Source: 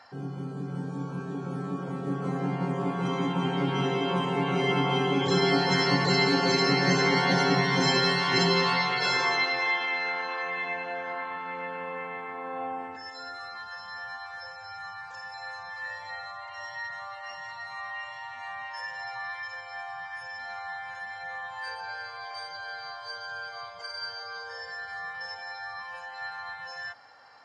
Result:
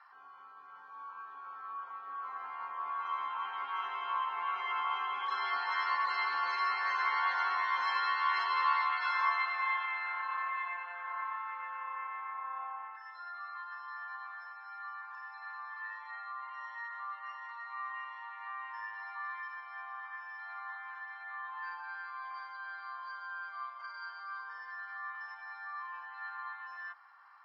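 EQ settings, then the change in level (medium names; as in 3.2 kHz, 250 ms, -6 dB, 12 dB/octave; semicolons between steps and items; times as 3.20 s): ladder band-pass 1.2 kHz, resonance 70%; distance through air 90 m; tilt shelf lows -9.5 dB, about 770 Hz; 0.0 dB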